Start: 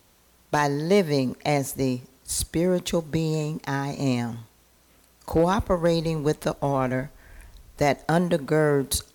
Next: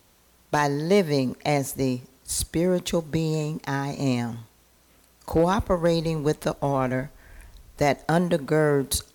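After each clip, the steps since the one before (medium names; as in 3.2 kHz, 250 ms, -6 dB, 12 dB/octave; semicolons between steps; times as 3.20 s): no audible change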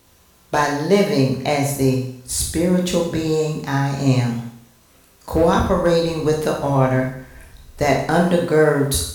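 reverberation RT60 0.65 s, pre-delay 15 ms, DRR -1 dB; trim +2.5 dB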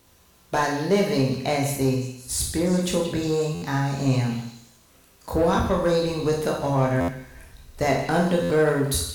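in parallel at -3 dB: saturation -15.5 dBFS, distortion -11 dB; on the sum: repeats whose band climbs or falls 179 ms, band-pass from 3.3 kHz, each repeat 0.7 oct, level -7.5 dB; buffer glitch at 3.54/7.00/8.42 s, samples 512, times 6; trim -8 dB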